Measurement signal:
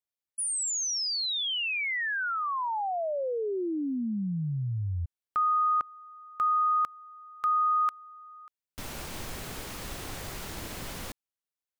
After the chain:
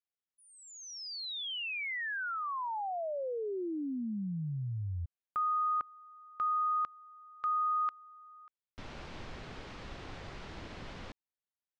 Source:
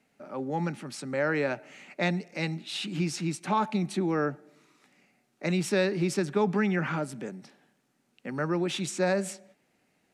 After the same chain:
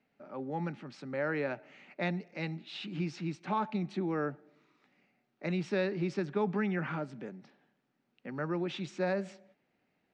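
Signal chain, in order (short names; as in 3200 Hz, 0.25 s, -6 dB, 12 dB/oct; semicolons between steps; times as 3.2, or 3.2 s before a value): Bessel low-pass 3500 Hz, order 4; gain -5.5 dB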